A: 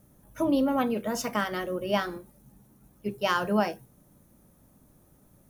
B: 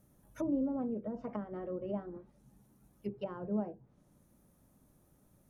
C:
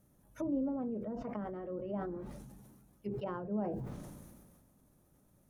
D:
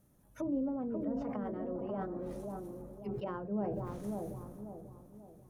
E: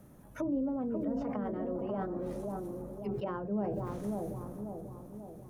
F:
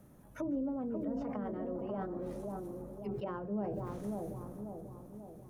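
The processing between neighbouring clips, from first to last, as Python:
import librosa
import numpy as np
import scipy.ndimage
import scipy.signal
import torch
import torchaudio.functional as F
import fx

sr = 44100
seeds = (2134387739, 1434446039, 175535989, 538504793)

y1 = fx.env_lowpass_down(x, sr, base_hz=460.0, full_db=-26.0)
y1 = y1 * librosa.db_to_amplitude(-7.0)
y2 = fx.sustainer(y1, sr, db_per_s=31.0)
y2 = y2 * librosa.db_to_amplitude(-2.0)
y3 = fx.echo_bbd(y2, sr, ms=539, stages=4096, feedback_pct=40, wet_db=-4.0)
y4 = fx.band_squash(y3, sr, depth_pct=40)
y4 = y4 * librosa.db_to_amplitude(2.5)
y5 = y4 + 10.0 ** (-23.5 / 20.0) * np.pad(y4, (int(148 * sr / 1000.0), 0))[:len(y4)]
y5 = y5 * librosa.db_to_amplitude(-3.0)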